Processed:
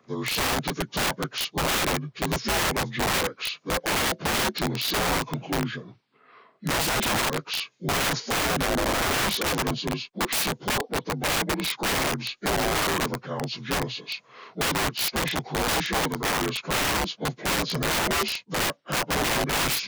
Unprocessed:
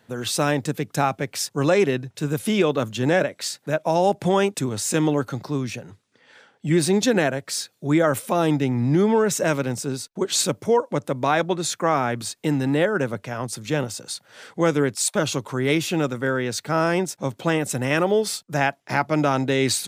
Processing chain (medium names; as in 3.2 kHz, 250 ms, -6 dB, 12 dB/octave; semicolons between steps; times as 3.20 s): frequency axis rescaled in octaves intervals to 81%; integer overflow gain 19.5 dB